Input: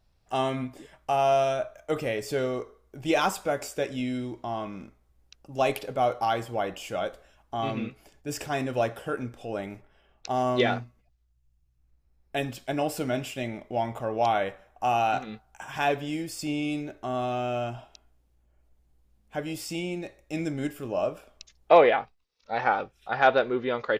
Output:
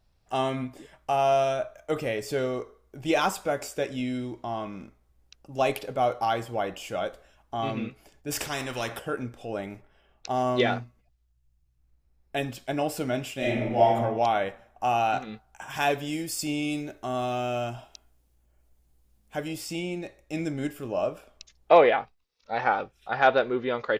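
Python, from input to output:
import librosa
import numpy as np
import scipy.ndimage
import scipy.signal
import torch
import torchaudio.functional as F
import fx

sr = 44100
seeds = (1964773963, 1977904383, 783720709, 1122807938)

y = fx.spectral_comp(x, sr, ratio=2.0, at=(8.3, 8.98), fade=0.02)
y = fx.reverb_throw(y, sr, start_s=13.37, length_s=0.58, rt60_s=1.0, drr_db=-6.5)
y = fx.high_shelf(y, sr, hz=5200.0, db=9.5, at=(15.7, 19.48))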